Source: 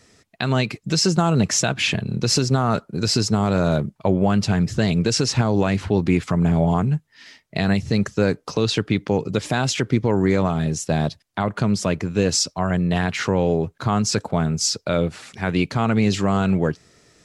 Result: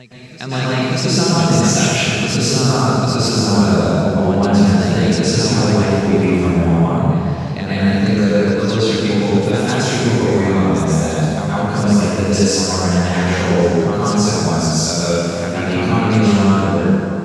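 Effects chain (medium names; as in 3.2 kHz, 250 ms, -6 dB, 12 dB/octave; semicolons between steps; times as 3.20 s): reverse echo 589 ms -16 dB; plate-style reverb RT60 2.6 s, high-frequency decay 0.75×, pre-delay 100 ms, DRR -9.5 dB; trim -4.5 dB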